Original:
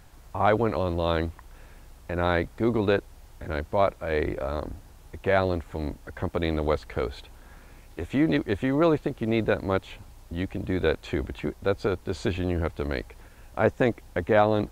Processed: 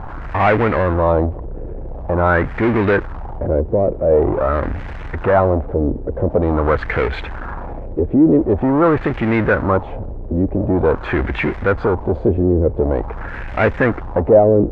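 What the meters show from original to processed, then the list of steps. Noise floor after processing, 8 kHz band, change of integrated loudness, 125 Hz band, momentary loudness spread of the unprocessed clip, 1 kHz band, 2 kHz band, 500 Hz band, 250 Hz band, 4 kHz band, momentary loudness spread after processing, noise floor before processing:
−29 dBFS, can't be measured, +10.0 dB, +11.0 dB, 15 LU, +9.5 dB, +9.5 dB, +10.0 dB, +10.0 dB, −0.5 dB, 14 LU, −51 dBFS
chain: power curve on the samples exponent 0.5
auto-filter low-pass sine 0.46 Hz 430–2,100 Hz
level +1.5 dB

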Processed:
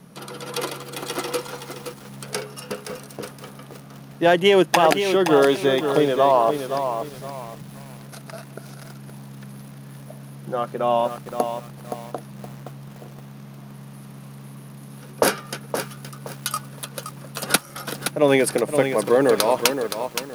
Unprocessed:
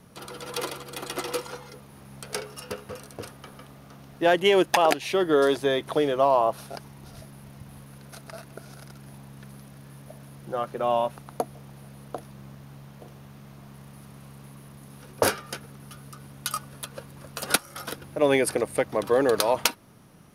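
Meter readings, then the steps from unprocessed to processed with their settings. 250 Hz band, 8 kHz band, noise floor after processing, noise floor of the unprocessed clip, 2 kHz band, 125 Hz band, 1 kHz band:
+6.0 dB, +4.0 dB, −42 dBFS, −49 dBFS, +4.0 dB, +6.5 dB, +4.5 dB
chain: low shelf with overshoot 120 Hz −7.5 dB, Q 3
feedback echo at a low word length 520 ms, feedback 35%, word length 7 bits, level −7.5 dB
level +3.5 dB

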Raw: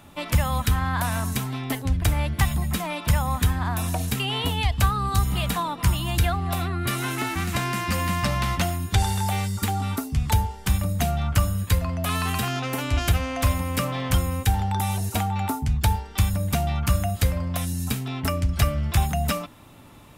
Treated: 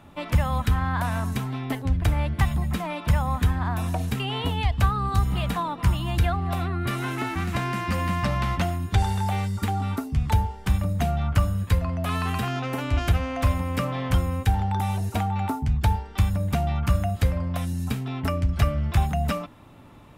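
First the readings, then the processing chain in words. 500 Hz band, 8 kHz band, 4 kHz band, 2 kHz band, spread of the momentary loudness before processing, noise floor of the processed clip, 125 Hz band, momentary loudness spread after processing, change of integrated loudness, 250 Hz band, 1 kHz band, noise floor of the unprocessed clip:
−0.5 dB, −10.0 dB, −5.5 dB, −2.5 dB, 4 LU, −42 dBFS, 0.0 dB, 4 LU, −1.0 dB, 0.0 dB, −0.5 dB, −41 dBFS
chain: high-shelf EQ 3,800 Hz −12 dB

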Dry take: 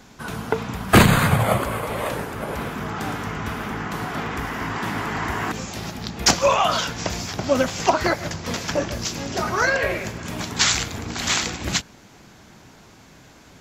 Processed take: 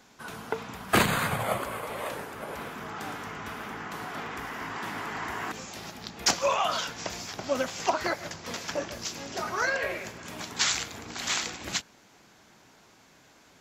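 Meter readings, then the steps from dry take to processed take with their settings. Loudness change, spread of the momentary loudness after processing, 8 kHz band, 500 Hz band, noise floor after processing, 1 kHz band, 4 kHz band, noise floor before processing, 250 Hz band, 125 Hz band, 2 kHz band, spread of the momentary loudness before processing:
−8.5 dB, 12 LU, −7.0 dB, −8.5 dB, −58 dBFS, −7.5 dB, −7.0 dB, −49 dBFS, −12.0 dB, −15.5 dB, −7.0 dB, 11 LU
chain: low-shelf EQ 200 Hz −12 dB
level −7 dB

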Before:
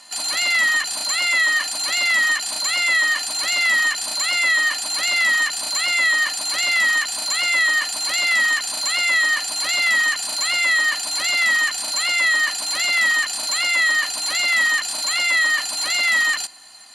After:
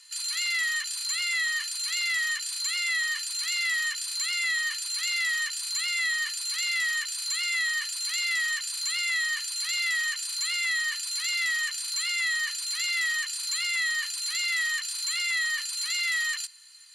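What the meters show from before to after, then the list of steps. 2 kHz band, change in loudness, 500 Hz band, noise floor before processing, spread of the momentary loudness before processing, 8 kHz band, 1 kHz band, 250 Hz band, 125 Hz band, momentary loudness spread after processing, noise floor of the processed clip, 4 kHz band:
−10.0 dB, −9.0 dB, below −40 dB, −27 dBFS, 4 LU, −6.5 dB, −16.5 dB, below −40 dB, can't be measured, 3 LU, −35 dBFS, −7.5 dB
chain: Bessel high-pass filter 2,100 Hz, order 8
level −6.5 dB

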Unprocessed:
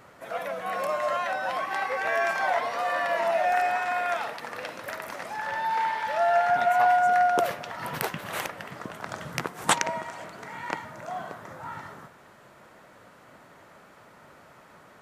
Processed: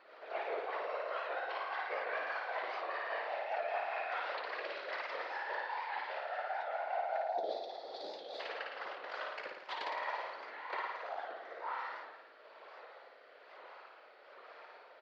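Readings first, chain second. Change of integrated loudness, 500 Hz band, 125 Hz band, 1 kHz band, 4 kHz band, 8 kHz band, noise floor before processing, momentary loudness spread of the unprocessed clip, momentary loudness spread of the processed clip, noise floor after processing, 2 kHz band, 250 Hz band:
−12.5 dB, −11.5 dB, below −35 dB, −13.5 dB, −10.0 dB, below −30 dB, −53 dBFS, 17 LU, 18 LU, −59 dBFS, −10.5 dB, −18.0 dB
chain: phase distortion by the signal itself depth 0.087 ms
Chebyshev band-pass filter 480–4,600 Hz, order 4
gain on a spectral selection 0:07.18–0:08.40, 790–3,300 Hz −21 dB
comb filter 5.2 ms, depth 33%
reversed playback
downward compressor 10 to 1, threshold −33 dBFS, peak gain reduction 15 dB
reversed playback
rotating-speaker cabinet horn 5 Hz, later 1.1 Hz, at 0:08.41
flanger 0.91 Hz, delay 6.9 ms, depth 10 ms, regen +58%
random phases in short frames
flutter between parallel walls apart 9.5 metres, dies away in 0.93 s
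wow of a warped record 78 rpm, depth 100 cents
level +2.5 dB

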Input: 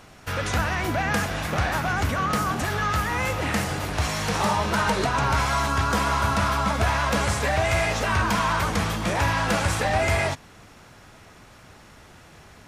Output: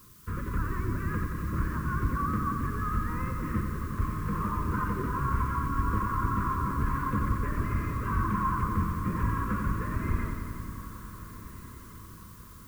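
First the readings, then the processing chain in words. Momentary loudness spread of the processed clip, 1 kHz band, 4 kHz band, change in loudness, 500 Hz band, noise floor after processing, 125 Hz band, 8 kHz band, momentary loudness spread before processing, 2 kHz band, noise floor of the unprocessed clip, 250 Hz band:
15 LU, −8.0 dB, below −25 dB, −7.5 dB, −15.0 dB, −48 dBFS, −3.5 dB, −19.0 dB, 3 LU, −14.0 dB, −49 dBFS, −3.0 dB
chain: sub-octave generator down 1 octave, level +1 dB
reverb reduction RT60 0.77 s
low-shelf EQ 200 Hz −4 dB
in parallel at −10 dB: comparator with hysteresis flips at −25.5 dBFS
on the sum: transistor ladder low-pass 1,100 Hz, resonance 85%
background noise blue −65 dBFS
Butterworth band-reject 760 Hz, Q 0.53
on a send: feedback delay with all-pass diffusion 1,487 ms, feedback 47%, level −15 dB
on the sum: feedback echo at a low word length 90 ms, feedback 80%, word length 11 bits, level −7 dB
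level +8.5 dB

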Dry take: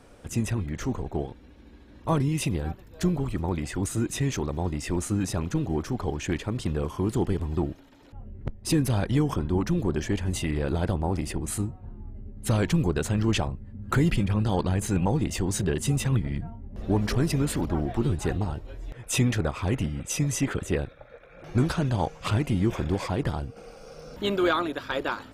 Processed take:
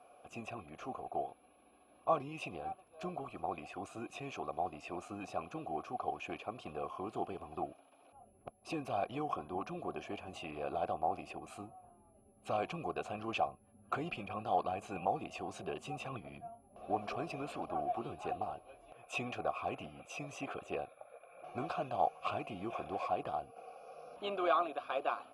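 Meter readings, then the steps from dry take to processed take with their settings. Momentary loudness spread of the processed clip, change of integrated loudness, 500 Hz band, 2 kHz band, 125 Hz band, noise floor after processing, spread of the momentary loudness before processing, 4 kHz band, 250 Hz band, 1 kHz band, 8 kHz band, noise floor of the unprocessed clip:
14 LU, −12.5 dB, −8.5 dB, −11.0 dB, −25.0 dB, −66 dBFS, 11 LU, −14.0 dB, −18.0 dB, −1.5 dB, −24.0 dB, −51 dBFS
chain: steady tone 11,000 Hz −46 dBFS
formant filter a
level +4.5 dB

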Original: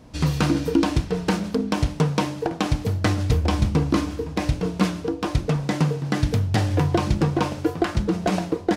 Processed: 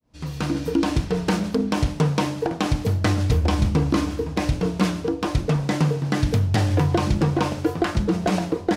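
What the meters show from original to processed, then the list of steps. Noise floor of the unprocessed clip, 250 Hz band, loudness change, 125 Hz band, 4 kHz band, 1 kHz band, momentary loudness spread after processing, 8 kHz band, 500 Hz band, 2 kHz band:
−36 dBFS, +0.5 dB, +0.5 dB, +1.0 dB, 0.0 dB, +0.5 dB, 4 LU, +0.5 dB, +0.5 dB, +0.5 dB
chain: fade in at the beginning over 1.04 s
in parallel at +1 dB: brickwall limiter −16 dBFS, peak gain reduction 8 dB
on the sum: level −4 dB

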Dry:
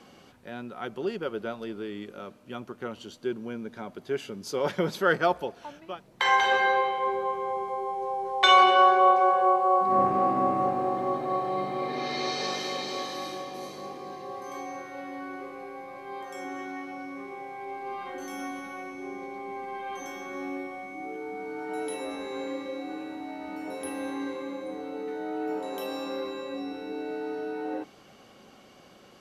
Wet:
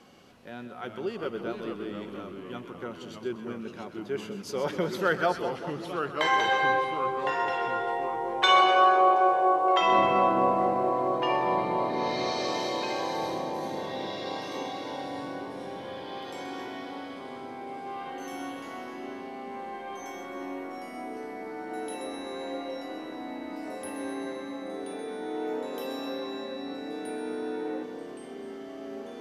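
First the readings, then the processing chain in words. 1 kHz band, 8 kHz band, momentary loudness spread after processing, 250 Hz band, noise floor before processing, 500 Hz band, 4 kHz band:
−1.0 dB, −1.5 dB, 17 LU, +0.5 dB, −54 dBFS, 0.0 dB, −1.0 dB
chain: delay with pitch and tempo change per echo 300 ms, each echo −2 semitones, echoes 3, each echo −6 dB
echo with a time of its own for lows and highs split 1,200 Hz, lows 193 ms, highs 128 ms, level −10 dB
level −2.5 dB

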